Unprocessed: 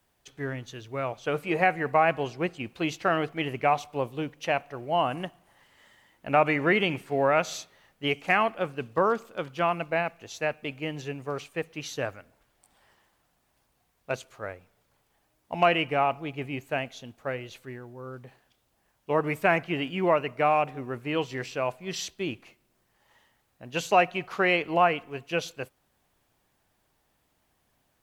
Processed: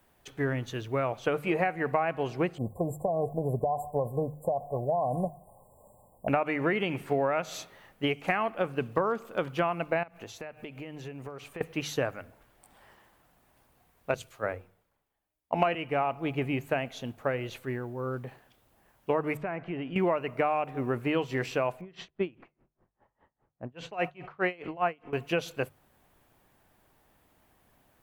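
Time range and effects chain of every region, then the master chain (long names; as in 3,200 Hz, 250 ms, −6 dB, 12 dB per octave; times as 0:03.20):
0:02.58–0:06.28: comb filter 1.6 ms, depth 66% + downward compressor 10 to 1, threshold −26 dBFS + linear-phase brick-wall band-stop 1,100–7,100 Hz
0:10.03–0:11.61: mains-hum notches 60/120/180 Hz + downward compressor 12 to 1, threshold −43 dBFS
0:14.14–0:15.75: mains-hum notches 60/120/180/240/300/360/420/480 Hz + multiband upward and downward expander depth 70%
0:19.37–0:19.96: downward compressor 2.5 to 1, threshold −41 dBFS + head-to-tape spacing loss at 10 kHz 23 dB
0:21.81–0:25.13: low-pass that shuts in the quiet parts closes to 1,100 Hz, open at −18.5 dBFS + tremolo with a sine in dB 4.9 Hz, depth 29 dB
whole clip: downward compressor 6 to 1, threshold −31 dBFS; parametric band 5,500 Hz −7.5 dB 1.9 octaves; mains-hum notches 50/100/150 Hz; level +7 dB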